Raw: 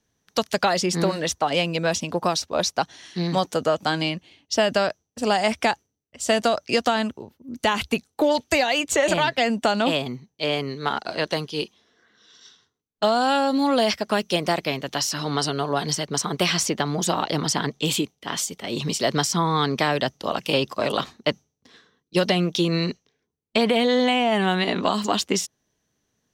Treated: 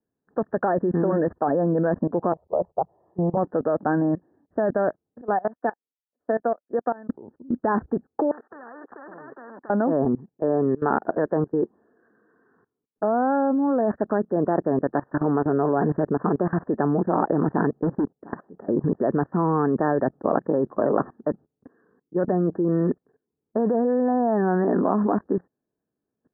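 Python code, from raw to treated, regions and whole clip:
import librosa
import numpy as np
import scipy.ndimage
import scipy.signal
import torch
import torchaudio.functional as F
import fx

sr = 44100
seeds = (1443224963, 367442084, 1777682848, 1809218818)

y = fx.chain(x, sr, fx.lowpass(hz=1000.0, slope=12),
    fx.fixed_phaser(hz=650.0, stages=4), at=(2.32, 3.37))
y = fx.chain(y, sr, fx.highpass(hz=430.0, slope=6),
    fx.comb(ms=4.1, depth=0.32),
    fx.upward_expand(threshold_db=-37.0, expansion=2.5), at=(5.21, 7.09))
y = fx.chain(y, sr, fx.highpass(hz=1400.0, slope=12),
    fx.spectral_comp(ratio=10.0), at=(8.31, 9.7))
y = fx.chain(y, sr, fx.lowpass(hz=1400.0, slope=6),
    fx.clip_hard(threshold_db=-27.5), at=(17.75, 18.31))
y = scipy.signal.sosfilt(scipy.signal.cheby1(10, 1.0, 1800.0, 'lowpass', fs=sr, output='sos'), y)
y = fx.peak_eq(y, sr, hz=350.0, db=14.0, octaves=2.8)
y = fx.level_steps(y, sr, step_db=21)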